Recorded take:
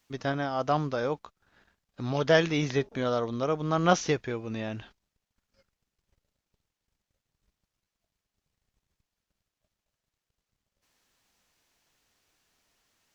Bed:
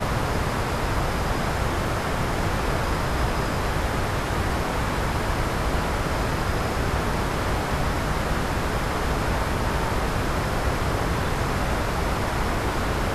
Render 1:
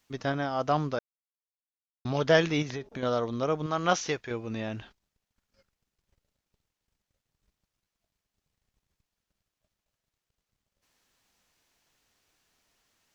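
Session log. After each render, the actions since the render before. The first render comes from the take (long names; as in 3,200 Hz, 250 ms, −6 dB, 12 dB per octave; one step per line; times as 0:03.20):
0:00.99–0:02.05: silence
0:02.62–0:03.03: downward compressor, threshold −32 dBFS
0:03.66–0:04.31: low-shelf EQ 460 Hz −8 dB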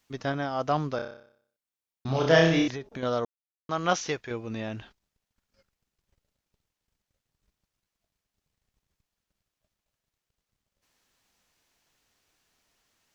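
0:00.96–0:02.68: flutter between parallel walls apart 5.2 metres, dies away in 0.59 s
0:03.25–0:03.69: silence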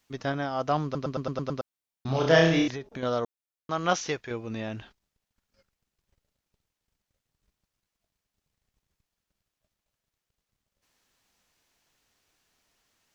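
0:00.84: stutter in place 0.11 s, 7 plays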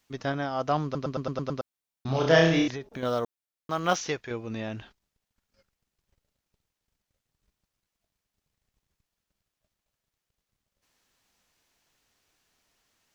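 0:02.82–0:04.06: one scale factor per block 7 bits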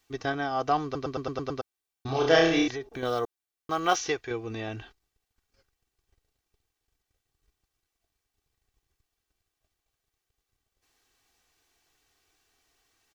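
comb filter 2.6 ms, depth 59%
dynamic equaliser 170 Hz, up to −5 dB, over −36 dBFS, Q 0.98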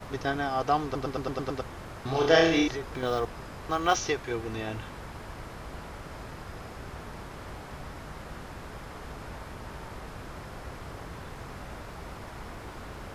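mix in bed −17 dB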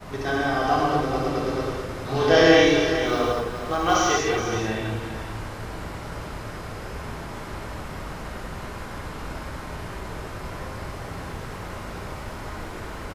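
single-tap delay 422 ms −10 dB
reverb whose tail is shaped and stops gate 270 ms flat, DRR −5.5 dB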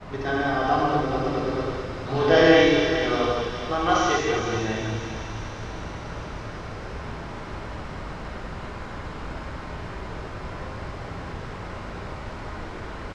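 high-frequency loss of the air 110 metres
delay with a high-pass on its return 199 ms, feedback 82%, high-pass 3,300 Hz, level −7.5 dB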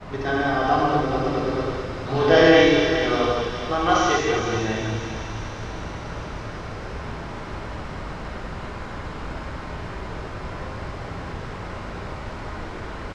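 level +2 dB
brickwall limiter −2 dBFS, peak gain reduction 1.5 dB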